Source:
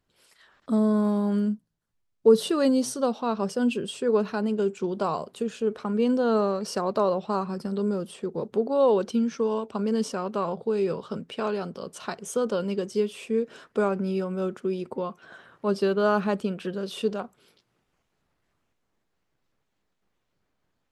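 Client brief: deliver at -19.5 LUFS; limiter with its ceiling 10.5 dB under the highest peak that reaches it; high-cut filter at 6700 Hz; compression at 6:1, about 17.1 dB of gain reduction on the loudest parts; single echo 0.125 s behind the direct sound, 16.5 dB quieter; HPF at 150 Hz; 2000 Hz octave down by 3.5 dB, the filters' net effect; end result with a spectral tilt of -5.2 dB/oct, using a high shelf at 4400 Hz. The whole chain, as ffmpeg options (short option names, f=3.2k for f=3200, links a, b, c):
-af "highpass=150,lowpass=6.7k,equalizer=f=2k:t=o:g=-6.5,highshelf=f=4.4k:g=3.5,acompressor=threshold=-31dB:ratio=6,alimiter=level_in=4.5dB:limit=-24dB:level=0:latency=1,volume=-4.5dB,aecho=1:1:125:0.15,volume=18.5dB"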